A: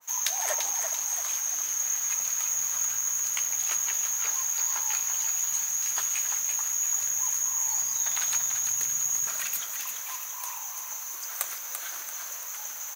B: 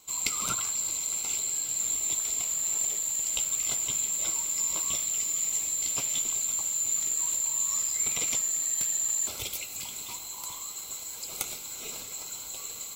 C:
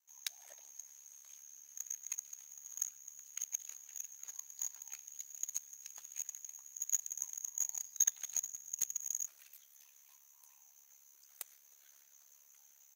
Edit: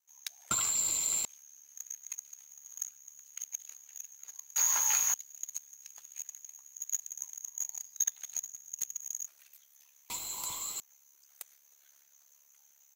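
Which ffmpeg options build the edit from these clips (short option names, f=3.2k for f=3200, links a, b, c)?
-filter_complex "[1:a]asplit=2[a][b];[2:a]asplit=4[c][d][e][f];[c]atrim=end=0.512[g];[a]atrim=start=0.508:end=1.252[h];[d]atrim=start=1.248:end=4.562[i];[0:a]atrim=start=4.558:end=5.142[j];[e]atrim=start=5.138:end=10.102[k];[b]atrim=start=10.098:end=10.802[l];[f]atrim=start=10.798[m];[g][h]acrossfade=d=0.004:c1=hsin:c2=hsin[n];[n][i]acrossfade=d=0.004:c1=hsin:c2=hsin[o];[o][j]acrossfade=d=0.004:c1=hsin:c2=hsin[p];[p][k]acrossfade=d=0.004:c1=hsin:c2=hsin[q];[q][l]acrossfade=d=0.004:c1=hsin:c2=hsin[r];[r][m]acrossfade=d=0.004:c1=hsin:c2=hsin"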